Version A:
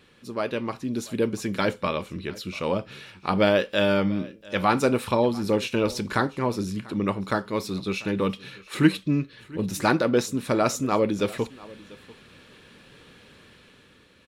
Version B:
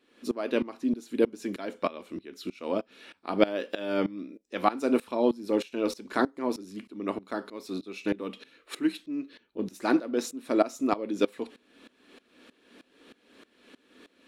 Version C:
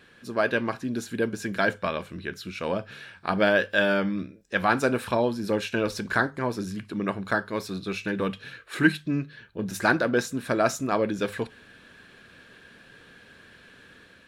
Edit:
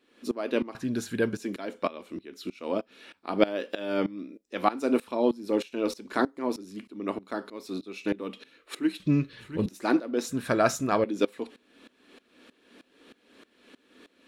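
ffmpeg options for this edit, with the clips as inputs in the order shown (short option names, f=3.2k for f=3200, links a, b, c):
-filter_complex "[2:a]asplit=2[a][b];[1:a]asplit=4[c][d][e][f];[c]atrim=end=0.752[g];[a]atrim=start=0.748:end=1.372[h];[d]atrim=start=1.368:end=9.002[i];[0:a]atrim=start=8.998:end=9.662[j];[e]atrim=start=9.658:end=10.292[k];[b]atrim=start=10.288:end=11.042[l];[f]atrim=start=11.038[m];[g][h]acrossfade=d=0.004:c1=hsin:c2=hsin[n];[n][i]acrossfade=d=0.004:c1=hsin:c2=hsin[o];[o][j]acrossfade=d=0.004:c1=hsin:c2=hsin[p];[p][k]acrossfade=d=0.004:c1=hsin:c2=hsin[q];[q][l]acrossfade=d=0.004:c1=hsin:c2=hsin[r];[r][m]acrossfade=d=0.004:c1=hsin:c2=hsin"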